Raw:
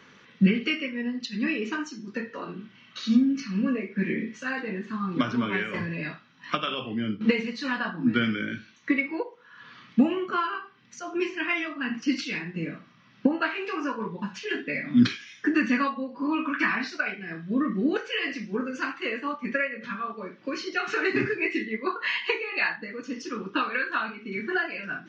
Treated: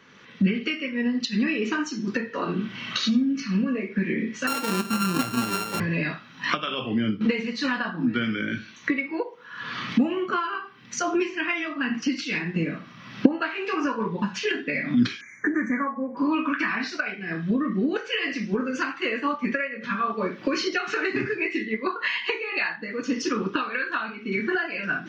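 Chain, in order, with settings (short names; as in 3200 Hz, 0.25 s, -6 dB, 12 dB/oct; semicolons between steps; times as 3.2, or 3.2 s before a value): 4.47–5.8 sample sorter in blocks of 32 samples; recorder AGC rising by 26 dB/s; 15.21–16.17 brick-wall FIR band-stop 2400–5900 Hz; gain -2 dB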